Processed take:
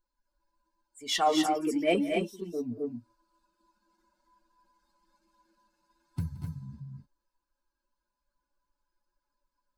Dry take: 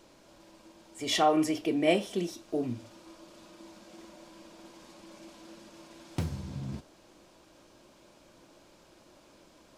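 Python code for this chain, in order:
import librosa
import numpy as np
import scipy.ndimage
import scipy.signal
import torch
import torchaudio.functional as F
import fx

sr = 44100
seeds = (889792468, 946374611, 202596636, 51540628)

p1 = fx.bin_expand(x, sr, power=2.0)
p2 = 10.0 ** (-30.5 / 20.0) * np.tanh(p1 / 10.0 ** (-30.5 / 20.0))
p3 = p1 + (p2 * 10.0 ** (-9.0 / 20.0))
y = fx.echo_multitap(p3, sr, ms=(173, 236, 250, 257), db=(-18.5, -10.5, -9.0, -6.5))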